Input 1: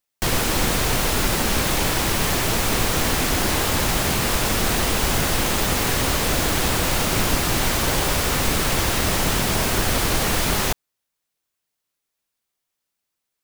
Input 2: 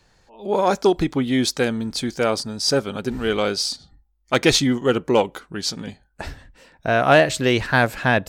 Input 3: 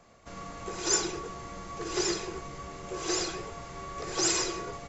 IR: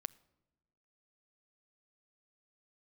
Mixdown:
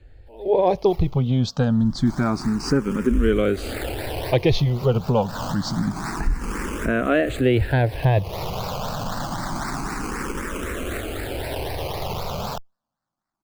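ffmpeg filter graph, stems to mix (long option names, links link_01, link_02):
-filter_complex "[0:a]adelay=1850,volume=-2dB[link_01];[1:a]aemphasis=mode=reproduction:type=riaa,acompressor=threshold=-14dB:ratio=3,volume=2dB,asplit=2[link_02][link_03];[2:a]adynamicequalizer=threshold=0.00562:dfrequency=440:dqfactor=1:tfrequency=440:tqfactor=1:attack=5:release=100:ratio=0.375:range=3:mode=boostabove:tftype=bell,volume=-17.5dB[link_04];[link_03]apad=whole_len=674145[link_05];[link_01][link_05]sidechaincompress=threshold=-27dB:ratio=12:attack=11:release=190[link_06];[link_06][link_04]amix=inputs=2:normalize=0,acrusher=samples=19:mix=1:aa=0.000001:lfo=1:lforange=11.4:lforate=3.9,alimiter=limit=-18.5dB:level=0:latency=1:release=11,volume=0dB[link_07];[link_02][link_07]amix=inputs=2:normalize=0,asplit=2[link_08][link_09];[link_09]afreqshift=0.27[link_10];[link_08][link_10]amix=inputs=2:normalize=1"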